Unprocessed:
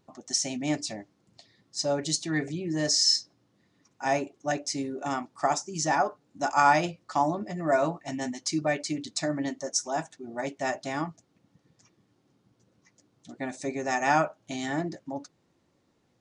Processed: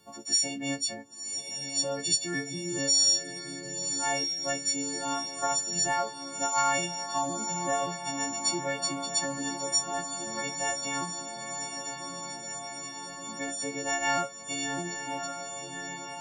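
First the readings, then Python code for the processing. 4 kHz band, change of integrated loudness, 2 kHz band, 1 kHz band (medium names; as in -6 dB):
+3.0 dB, -1.0 dB, -1.5 dB, -3.5 dB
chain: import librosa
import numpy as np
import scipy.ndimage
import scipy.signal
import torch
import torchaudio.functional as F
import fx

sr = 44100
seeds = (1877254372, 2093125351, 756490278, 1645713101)

p1 = fx.freq_snap(x, sr, grid_st=4)
p2 = p1 + fx.echo_diffused(p1, sr, ms=1069, feedback_pct=68, wet_db=-11, dry=0)
p3 = fx.band_squash(p2, sr, depth_pct=40)
y = F.gain(torch.from_numpy(p3), -5.5).numpy()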